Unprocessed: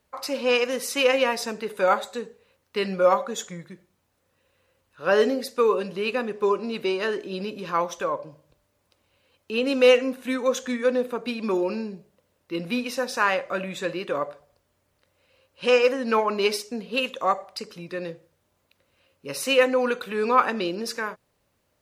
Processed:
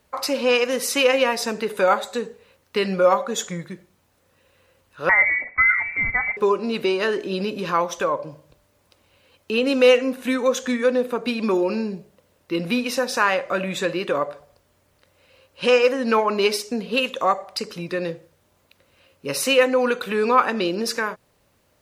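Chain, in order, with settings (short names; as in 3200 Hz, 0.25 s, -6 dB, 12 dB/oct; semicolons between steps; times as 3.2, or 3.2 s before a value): in parallel at +3 dB: compressor, threshold -30 dBFS, peak gain reduction 17 dB; 5.09–6.37 on the sum: inverted band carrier 2500 Hz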